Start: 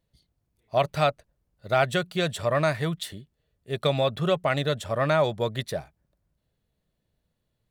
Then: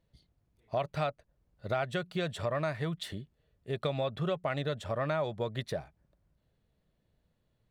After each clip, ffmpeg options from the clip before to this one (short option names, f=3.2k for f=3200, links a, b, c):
-af "lowpass=f=3.3k:p=1,acompressor=threshold=-36dB:ratio=2.5,volume=2dB"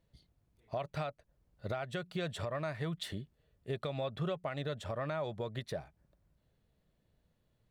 -af "alimiter=level_in=3.5dB:limit=-24dB:level=0:latency=1:release=272,volume=-3.5dB"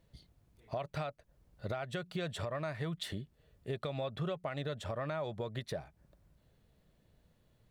-af "acompressor=threshold=-52dB:ratio=1.5,volume=6dB"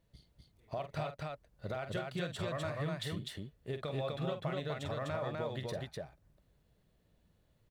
-filter_complex "[0:a]asplit=2[a][b];[b]aeval=exprs='sgn(val(0))*max(abs(val(0))-0.002,0)':c=same,volume=-6dB[c];[a][c]amix=inputs=2:normalize=0,aecho=1:1:46.65|250.7:0.355|0.794,volume=-5dB"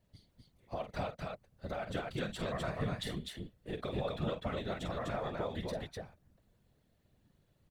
-af "afftfilt=real='hypot(re,im)*cos(2*PI*random(0))':imag='hypot(re,im)*sin(2*PI*random(1))':win_size=512:overlap=0.75,volume=6dB"